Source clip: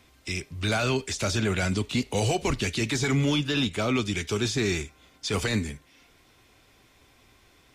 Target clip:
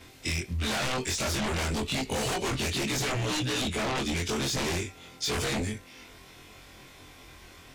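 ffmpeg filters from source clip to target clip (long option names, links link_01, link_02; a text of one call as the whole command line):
ffmpeg -i in.wav -af "afftfilt=real='re':imag='-im':win_size=2048:overlap=0.75,aeval=exprs='0.15*sin(PI/2*4.47*val(0)/0.15)':channel_layout=same,acompressor=threshold=-24dB:ratio=6,volume=-4dB" out.wav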